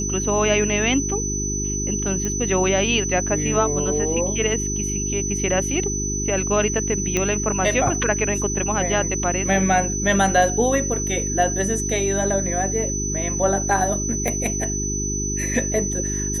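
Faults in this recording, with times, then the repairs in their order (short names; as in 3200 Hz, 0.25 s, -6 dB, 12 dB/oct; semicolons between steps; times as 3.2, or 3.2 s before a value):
hum 50 Hz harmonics 8 -27 dBFS
tone 6000 Hz -25 dBFS
2.25 pop -13 dBFS
7.17 pop -7 dBFS
14.28 pop -10 dBFS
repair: de-click; de-hum 50 Hz, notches 8; notch 6000 Hz, Q 30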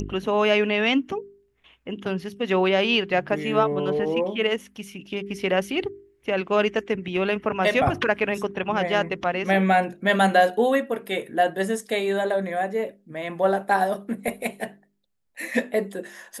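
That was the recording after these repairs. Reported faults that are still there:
none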